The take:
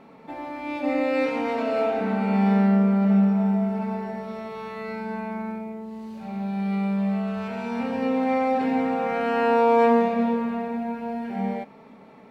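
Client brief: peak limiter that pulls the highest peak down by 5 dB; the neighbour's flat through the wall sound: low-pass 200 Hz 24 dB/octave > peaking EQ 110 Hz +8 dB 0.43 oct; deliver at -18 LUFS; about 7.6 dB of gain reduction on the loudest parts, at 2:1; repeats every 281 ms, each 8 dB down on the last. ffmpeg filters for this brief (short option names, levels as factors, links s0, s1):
-af "acompressor=threshold=0.0316:ratio=2,alimiter=limit=0.0708:level=0:latency=1,lowpass=f=200:w=0.5412,lowpass=f=200:w=1.3066,equalizer=f=110:t=o:w=0.43:g=8,aecho=1:1:281|562|843|1124|1405:0.398|0.159|0.0637|0.0255|0.0102,volume=9.44"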